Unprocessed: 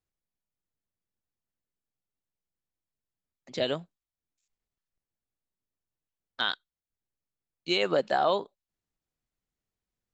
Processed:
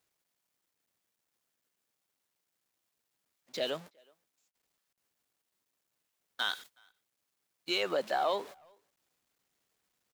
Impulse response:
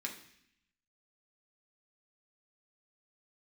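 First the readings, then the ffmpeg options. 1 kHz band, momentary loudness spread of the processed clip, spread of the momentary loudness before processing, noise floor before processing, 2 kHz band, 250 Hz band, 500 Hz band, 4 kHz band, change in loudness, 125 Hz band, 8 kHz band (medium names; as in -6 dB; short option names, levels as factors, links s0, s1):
-5.0 dB, 13 LU, 13 LU, under -85 dBFS, -3.5 dB, -8.0 dB, -5.5 dB, -3.5 dB, -5.0 dB, -12.0 dB, no reading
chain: -filter_complex "[0:a]aeval=exprs='val(0)+0.5*0.0106*sgn(val(0))':c=same,highpass=f=440:p=1,agate=range=0.0447:threshold=0.00708:ratio=16:detection=peak,asplit=2[s0][s1];[s1]asoftclip=type=tanh:threshold=0.0447,volume=0.422[s2];[s0][s2]amix=inputs=2:normalize=0,asplit=2[s3][s4];[s4]adelay=370,highpass=300,lowpass=3400,asoftclip=type=hard:threshold=0.0891,volume=0.0355[s5];[s3][s5]amix=inputs=2:normalize=0,volume=0.501"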